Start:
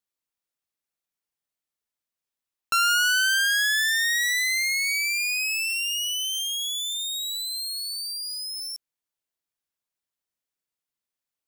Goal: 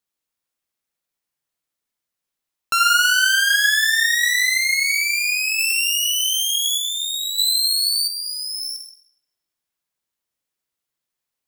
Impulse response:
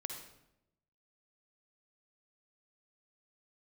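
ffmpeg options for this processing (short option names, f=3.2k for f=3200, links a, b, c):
-filter_complex "[0:a]asettb=1/sr,asplit=3[a][b][c];[a]atrim=end=5.594[d];[b]atrim=start=5.59:end=6.78,asetpts=PTS-STARTPTS,afade=t=in:d=0.004:c=qsin,afade=t=out:st=1.186:d=0.004:c=qsin,highshelf=f=5.9k:g=7[e];[c]atrim=start=6.776[f];[d][e]acrossfade=d=0.004:c1=hsin:c2=qsin[g];[g][f]acrossfade=d=0.004:c1=qsin:c2=hsin[h];[1:a]atrim=start_sample=2205[i];[h][i]afir=irnorm=-1:irlink=0,asettb=1/sr,asplit=3[j][k][l];[j]atrim=end=7.384[m];[k]atrim=start=7.38:end=8.08,asetpts=PTS-STARTPTS,afade=t=in:d=0.004:c=qsin,afade=t=out:st=0.696:d=0.004:c=qsin,acontrast=79[n];[l]atrim=start=8.076[o];[m][n]acrossfade=d=0.004:c1=hsin:c2=qsin[p];[p][o]acrossfade=d=0.004:c1=qsin:c2=hsin,volume=6.5dB"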